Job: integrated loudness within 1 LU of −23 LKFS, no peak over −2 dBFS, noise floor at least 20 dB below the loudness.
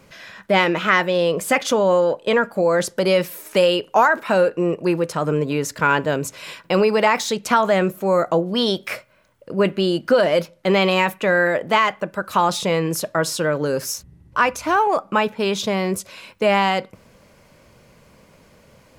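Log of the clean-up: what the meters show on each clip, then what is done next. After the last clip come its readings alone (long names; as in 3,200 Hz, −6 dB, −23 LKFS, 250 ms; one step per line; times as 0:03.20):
integrated loudness −19.5 LKFS; sample peak −3.5 dBFS; target loudness −23.0 LKFS
→ level −3.5 dB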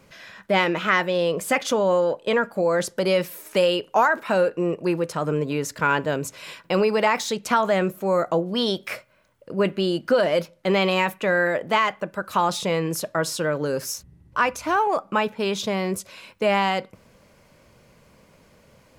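integrated loudness −23.0 LKFS; sample peak −7.0 dBFS; background noise floor −57 dBFS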